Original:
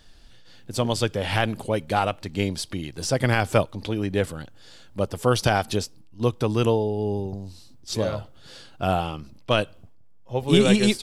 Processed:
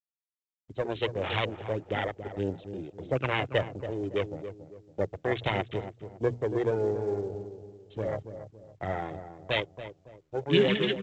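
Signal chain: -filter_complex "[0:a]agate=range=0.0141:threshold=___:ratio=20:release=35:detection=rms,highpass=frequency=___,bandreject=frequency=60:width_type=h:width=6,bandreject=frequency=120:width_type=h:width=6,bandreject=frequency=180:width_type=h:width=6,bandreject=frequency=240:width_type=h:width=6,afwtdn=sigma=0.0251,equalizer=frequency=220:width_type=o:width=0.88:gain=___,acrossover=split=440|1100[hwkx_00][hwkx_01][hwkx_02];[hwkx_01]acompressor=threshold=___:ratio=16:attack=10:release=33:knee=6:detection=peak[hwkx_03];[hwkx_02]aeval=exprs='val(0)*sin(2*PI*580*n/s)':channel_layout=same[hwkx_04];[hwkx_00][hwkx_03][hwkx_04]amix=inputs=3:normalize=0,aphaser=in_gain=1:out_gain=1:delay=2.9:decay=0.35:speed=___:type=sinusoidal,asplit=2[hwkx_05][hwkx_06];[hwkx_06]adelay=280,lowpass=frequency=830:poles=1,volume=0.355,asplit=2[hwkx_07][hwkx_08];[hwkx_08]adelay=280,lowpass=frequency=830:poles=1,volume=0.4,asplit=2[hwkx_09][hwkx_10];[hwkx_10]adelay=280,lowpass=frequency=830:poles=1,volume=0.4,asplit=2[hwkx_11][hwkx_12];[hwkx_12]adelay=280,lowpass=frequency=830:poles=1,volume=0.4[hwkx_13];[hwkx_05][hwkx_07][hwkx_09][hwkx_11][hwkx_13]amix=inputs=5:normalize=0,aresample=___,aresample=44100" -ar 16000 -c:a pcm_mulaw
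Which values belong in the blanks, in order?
0.0178, 160, -13, 0.0112, 1.6, 8000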